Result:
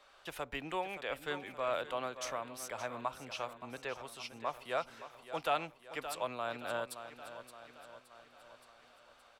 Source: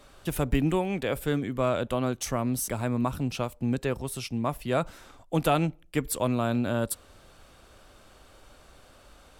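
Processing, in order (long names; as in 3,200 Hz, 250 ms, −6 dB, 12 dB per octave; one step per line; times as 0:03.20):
three-way crossover with the lows and the highs turned down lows −21 dB, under 530 Hz, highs −13 dB, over 5,500 Hz
on a send: repeating echo 571 ms, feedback 57%, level −12 dB
on the sum: amplitude modulation by smooth noise, depth 50%
level −2.5 dB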